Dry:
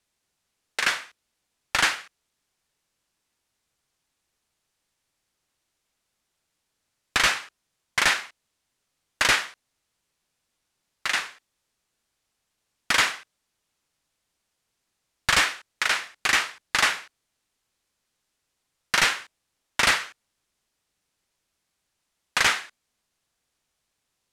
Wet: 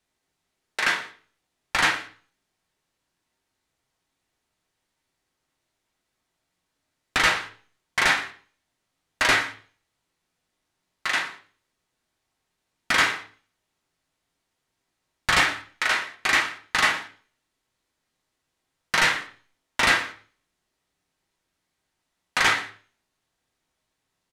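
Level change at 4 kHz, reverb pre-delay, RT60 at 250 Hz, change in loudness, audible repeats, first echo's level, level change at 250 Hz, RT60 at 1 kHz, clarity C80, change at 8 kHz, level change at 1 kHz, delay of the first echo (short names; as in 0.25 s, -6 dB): -1.0 dB, 3 ms, 0.55 s, +0.5 dB, 1, -20.5 dB, +4.0 dB, 0.40 s, 15.5 dB, -3.5 dB, +2.0 dB, 0.118 s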